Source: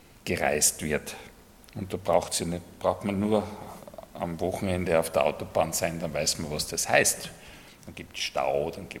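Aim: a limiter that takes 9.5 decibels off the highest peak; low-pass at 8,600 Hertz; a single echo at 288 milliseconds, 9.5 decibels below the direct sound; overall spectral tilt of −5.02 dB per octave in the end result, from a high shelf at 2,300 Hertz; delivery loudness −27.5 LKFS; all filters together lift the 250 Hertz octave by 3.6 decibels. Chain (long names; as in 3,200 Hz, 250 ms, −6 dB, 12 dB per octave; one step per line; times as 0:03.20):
low-pass filter 8,600 Hz
parametric band 250 Hz +5 dB
high-shelf EQ 2,300 Hz −7.5 dB
brickwall limiter −16 dBFS
single-tap delay 288 ms −9.5 dB
level +3 dB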